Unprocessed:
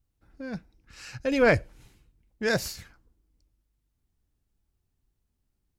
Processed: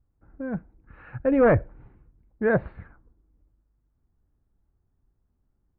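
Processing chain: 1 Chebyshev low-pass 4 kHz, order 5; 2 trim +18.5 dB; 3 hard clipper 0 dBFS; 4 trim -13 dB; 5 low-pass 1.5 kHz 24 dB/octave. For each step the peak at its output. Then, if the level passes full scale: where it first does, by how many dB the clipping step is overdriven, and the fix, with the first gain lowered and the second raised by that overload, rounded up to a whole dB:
-10.5 dBFS, +8.0 dBFS, 0.0 dBFS, -13.0 dBFS, -11.5 dBFS; step 2, 8.0 dB; step 2 +10.5 dB, step 4 -5 dB

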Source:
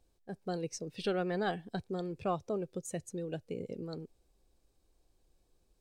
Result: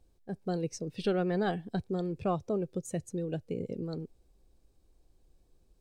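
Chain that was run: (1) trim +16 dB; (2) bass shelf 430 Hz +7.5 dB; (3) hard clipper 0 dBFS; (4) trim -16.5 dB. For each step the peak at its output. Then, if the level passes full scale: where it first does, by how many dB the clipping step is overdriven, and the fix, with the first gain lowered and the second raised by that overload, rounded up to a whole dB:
-5.0 dBFS, -2.5 dBFS, -2.5 dBFS, -19.0 dBFS; nothing clips

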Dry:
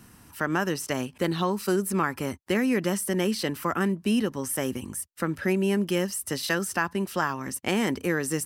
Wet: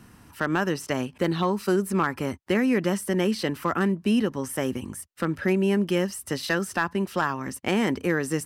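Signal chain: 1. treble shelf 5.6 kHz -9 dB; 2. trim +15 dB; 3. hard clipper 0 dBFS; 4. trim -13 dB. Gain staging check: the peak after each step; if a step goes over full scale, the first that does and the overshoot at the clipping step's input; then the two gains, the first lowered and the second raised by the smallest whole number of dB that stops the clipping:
-11.0 dBFS, +4.0 dBFS, 0.0 dBFS, -13.0 dBFS; step 2, 4.0 dB; step 2 +11 dB, step 4 -9 dB

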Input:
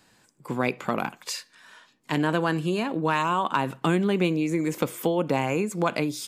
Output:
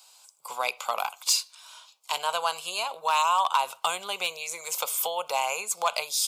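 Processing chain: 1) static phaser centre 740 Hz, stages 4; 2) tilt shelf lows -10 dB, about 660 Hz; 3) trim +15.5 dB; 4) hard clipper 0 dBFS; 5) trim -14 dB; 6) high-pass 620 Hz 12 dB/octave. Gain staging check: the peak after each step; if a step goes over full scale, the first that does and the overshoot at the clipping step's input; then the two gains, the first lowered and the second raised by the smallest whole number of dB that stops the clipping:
-12.5 dBFS, -10.0 dBFS, +5.5 dBFS, 0.0 dBFS, -14.0 dBFS, -10.5 dBFS; step 3, 5.5 dB; step 3 +9.5 dB, step 5 -8 dB

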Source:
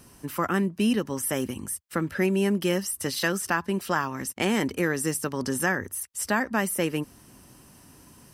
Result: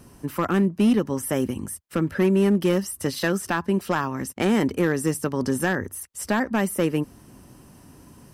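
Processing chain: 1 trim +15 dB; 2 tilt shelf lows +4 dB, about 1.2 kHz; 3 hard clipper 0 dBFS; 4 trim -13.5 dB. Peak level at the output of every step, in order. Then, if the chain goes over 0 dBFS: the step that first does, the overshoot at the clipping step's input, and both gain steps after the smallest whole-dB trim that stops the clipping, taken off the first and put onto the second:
+5.0 dBFS, +6.0 dBFS, 0.0 dBFS, -13.5 dBFS; step 1, 6.0 dB; step 1 +9 dB, step 4 -7.5 dB

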